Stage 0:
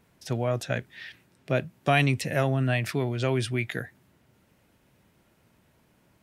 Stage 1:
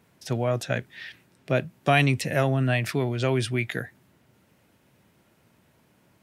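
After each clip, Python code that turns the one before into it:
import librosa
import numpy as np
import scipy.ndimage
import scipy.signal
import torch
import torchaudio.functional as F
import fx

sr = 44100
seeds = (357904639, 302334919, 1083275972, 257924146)

y = scipy.signal.sosfilt(scipy.signal.butter(2, 76.0, 'highpass', fs=sr, output='sos'), x)
y = F.gain(torch.from_numpy(y), 2.0).numpy()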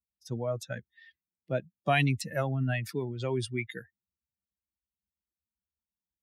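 y = fx.bin_expand(x, sr, power=2.0)
y = F.gain(torch.from_numpy(y), -3.0).numpy()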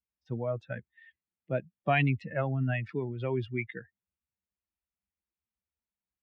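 y = scipy.signal.sosfilt(scipy.signal.cheby1(3, 1.0, 2600.0, 'lowpass', fs=sr, output='sos'), x)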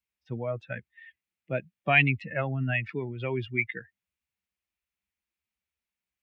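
y = fx.peak_eq(x, sr, hz=2400.0, db=10.0, octaves=1.0)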